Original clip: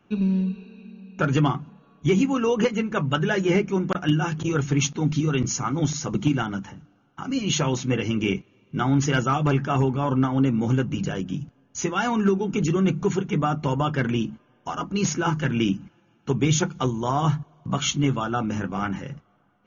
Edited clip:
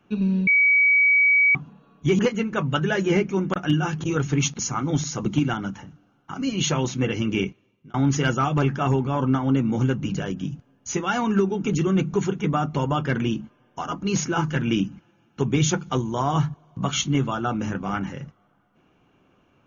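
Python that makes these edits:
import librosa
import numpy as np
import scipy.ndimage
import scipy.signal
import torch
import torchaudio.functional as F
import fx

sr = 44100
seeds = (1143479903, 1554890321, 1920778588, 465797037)

y = fx.edit(x, sr, fx.bleep(start_s=0.47, length_s=1.08, hz=2270.0, db=-14.0),
    fx.cut(start_s=2.19, length_s=0.39),
    fx.cut(start_s=4.98, length_s=0.5),
    fx.fade_out_span(start_s=8.28, length_s=0.55), tone=tone)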